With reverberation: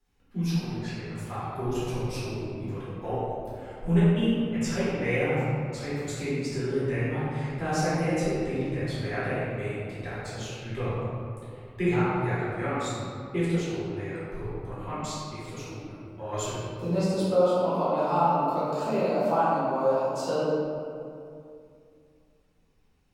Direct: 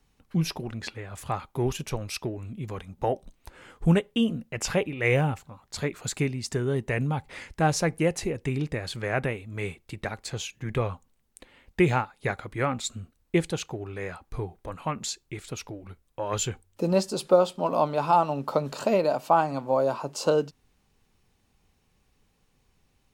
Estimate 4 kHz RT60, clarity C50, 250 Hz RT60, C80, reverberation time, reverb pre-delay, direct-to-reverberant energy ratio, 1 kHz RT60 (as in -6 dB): 1.3 s, -4.0 dB, 3.0 s, -1.5 dB, 2.6 s, 3 ms, -12.0 dB, 2.5 s